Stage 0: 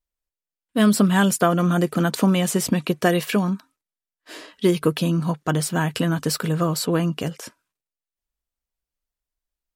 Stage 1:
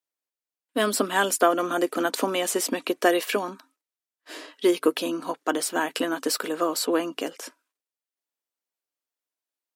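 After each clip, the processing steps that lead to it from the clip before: elliptic high-pass 270 Hz, stop band 60 dB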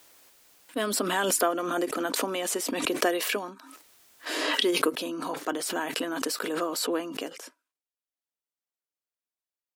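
swell ahead of each attack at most 27 dB/s; trim -6 dB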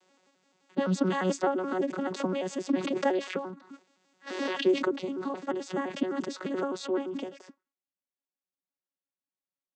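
vocoder on a broken chord bare fifth, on F#3, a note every 86 ms

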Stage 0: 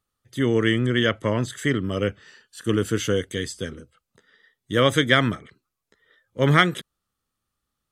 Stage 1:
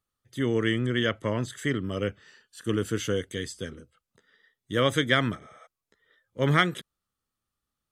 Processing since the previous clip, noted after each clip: spectral replace 5.44–5.64 s, 460–10000 Hz before; trim -5 dB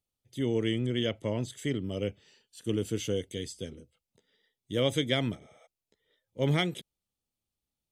high-order bell 1.4 kHz -12.5 dB 1 oct; trim -3 dB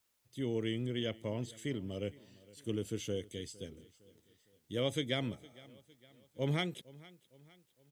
word length cut 12-bit, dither triangular; feedback delay 459 ms, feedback 47%, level -21.5 dB; trim -6.5 dB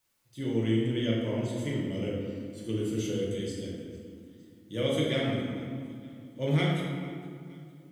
reverberation RT60 2.1 s, pre-delay 3 ms, DRR -5 dB

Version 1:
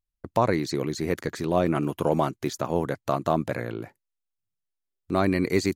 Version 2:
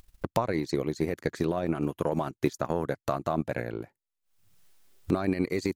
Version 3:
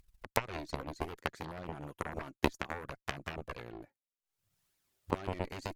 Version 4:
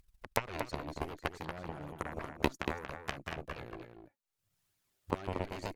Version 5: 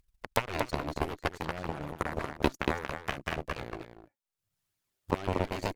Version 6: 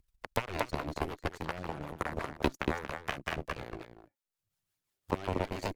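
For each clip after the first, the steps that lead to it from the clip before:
peak limiter -16 dBFS, peak gain reduction 8 dB; upward compressor, threshold -33 dBFS; transient shaper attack +8 dB, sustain -9 dB; trim -3 dB
flange 0.63 Hz, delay 0.4 ms, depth 3.5 ms, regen +49%; Chebyshev shaper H 3 -9 dB, 4 -21 dB, 7 -30 dB, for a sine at -15.5 dBFS; trim +4.5 dB
echo from a far wall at 40 m, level -6 dB; trim -1 dB
waveshaping leveller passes 2
harmonic tremolo 5.6 Hz, depth 50%, crossover 450 Hz

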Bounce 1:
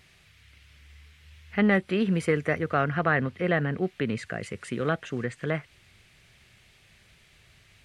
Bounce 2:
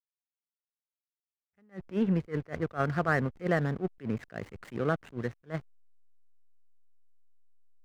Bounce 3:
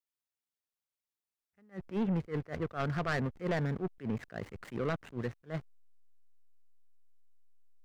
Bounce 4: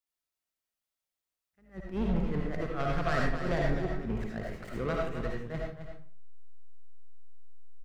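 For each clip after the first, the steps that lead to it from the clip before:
low-pass that closes with the level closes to 1.9 kHz, closed at -24 dBFS; hysteresis with a dead band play -34 dBFS; attacks held to a fixed rise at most 310 dB/s; trim -1.5 dB
saturation -26.5 dBFS, distortion -9 dB
octave divider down 2 oct, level -5 dB; delay 265 ms -9 dB; reverberation RT60 0.45 s, pre-delay 35 ms, DRR -1.5 dB; trim -1 dB

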